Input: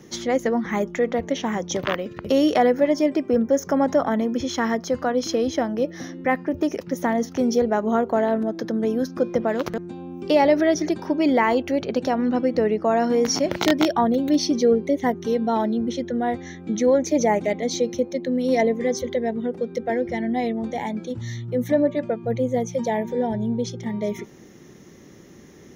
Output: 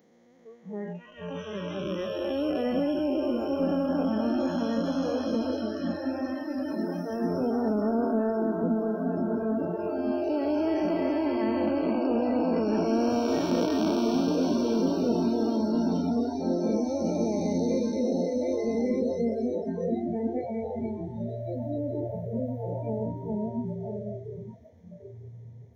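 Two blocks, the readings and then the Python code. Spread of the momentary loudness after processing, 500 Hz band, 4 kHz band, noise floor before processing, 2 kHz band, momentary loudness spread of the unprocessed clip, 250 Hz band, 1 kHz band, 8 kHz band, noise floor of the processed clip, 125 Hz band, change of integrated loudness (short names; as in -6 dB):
9 LU, -7.0 dB, -10.0 dB, -46 dBFS, -13.0 dB, 8 LU, -3.5 dB, -10.0 dB, -14.0 dB, -48 dBFS, -1.5 dB, -5.5 dB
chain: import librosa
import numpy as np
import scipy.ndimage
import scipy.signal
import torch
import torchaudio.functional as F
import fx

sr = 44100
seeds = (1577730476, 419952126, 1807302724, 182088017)

p1 = fx.spec_blur(x, sr, span_ms=1140.0)
p2 = scipy.signal.sosfilt(scipy.signal.butter(2, 45.0, 'highpass', fs=sr, output='sos'), p1)
p3 = fx.echo_diffused(p2, sr, ms=1217, feedback_pct=66, wet_db=-5.5)
p4 = np.clip(p3, -10.0 ** (-21.5 / 20.0), 10.0 ** (-21.5 / 20.0))
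p5 = p3 + F.gain(torch.from_numpy(p4), -8.0).numpy()
p6 = fx.noise_reduce_blind(p5, sr, reduce_db=27)
y = F.gain(torch.from_numpy(p6), -3.5).numpy()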